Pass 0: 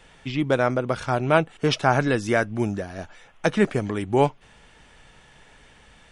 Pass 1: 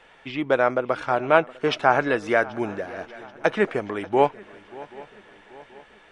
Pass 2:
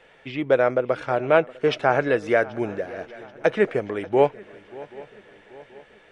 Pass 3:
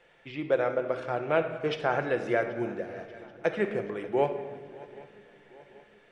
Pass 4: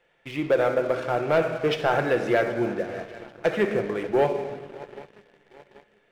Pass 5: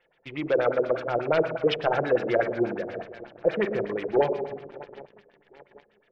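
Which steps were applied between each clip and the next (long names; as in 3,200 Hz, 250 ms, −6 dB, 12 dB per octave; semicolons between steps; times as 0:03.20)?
bass and treble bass −15 dB, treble −14 dB; feedback echo with a long and a short gap by turns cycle 782 ms, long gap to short 3 to 1, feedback 46%, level −20.5 dB; level +2.5 dB
octave-band graphic EQ 125/500/1,000/2,000 Hz +6/+7/−4/+3 dB; level −3 dB
rectangular room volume 1,300 cubic metres, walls mixed, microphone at 0.85 metres; level −8 dB
leveller curve on the samples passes 2; level −1 dB
auto-filter low-pass sine 8.3 Hz 410–5,100 Hz; level −4 dB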